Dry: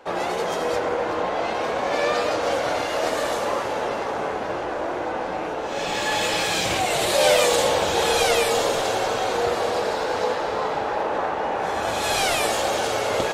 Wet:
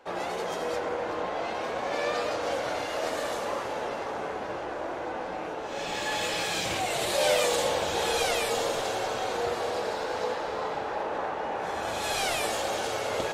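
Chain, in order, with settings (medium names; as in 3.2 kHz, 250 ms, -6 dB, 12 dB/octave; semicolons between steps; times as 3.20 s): de-hum 51.89 Hz, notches 27; trim -6.5 dB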